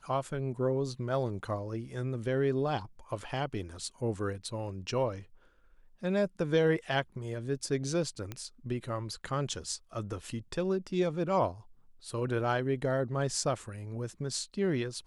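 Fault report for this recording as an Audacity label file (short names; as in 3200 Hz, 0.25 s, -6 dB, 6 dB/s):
8.320000	8.320000	pop -23 dBFS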